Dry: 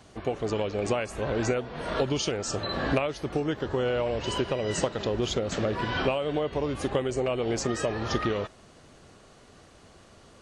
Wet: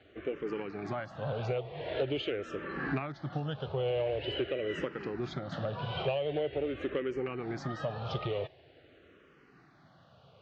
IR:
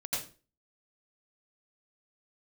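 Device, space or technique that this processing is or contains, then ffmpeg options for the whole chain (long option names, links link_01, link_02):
barber-pole phaser into a guitar amplifier: -filter_complex "[0:a]asplit=2[link_01][link_02];[link_02]afreqshift=-0.45[link_03];[link_01][link_03]amix=inputs=2:normalize=1,asoftclip=type=tanh:threshold=-20dB,highpass=100,equalizer=frequency=140:width_type=q:width=4:gain=5,equalizer=frequency=220:width_type=q:width=4:gain=-8,equalizer=frequency=1000:width_type=q:width=4:gain=-7,lowpass=frequency=3600:width=0.5412,lowpass=frequency=3600:width=1.3066,asettb=1/sr,asplit=3[link_04][link_05][link_06];[link_04]atrim=end=3.124[link_07];[link_05]atrim=start=3.12:end=3.72,asetpts=PTS-STARTPTS,afade=type=in:duration=0.004:curve=qsin,afade=type=out:start_time=0.596:duration=0.004:curve=qsin,adynamicequalizer=threshold=0.00282:dfrequency=1700:dqfactor=0.7:tfrequency=1700:tqfactor=0.7:attack=5:release=100:ratio=0.375:range=1.5:mode=boostabove:tftype=highshelf[link_08];[link_06]atrim=start=3.716[link_09];[link_07][link_08]acrossfade=duration=0.004:curve1=hsin:curve2=qsin[link_10];[link_10][link_09]acrossfade=duration=0.004:curve1=qsin:curve2=hsin,volume=-1.5dB"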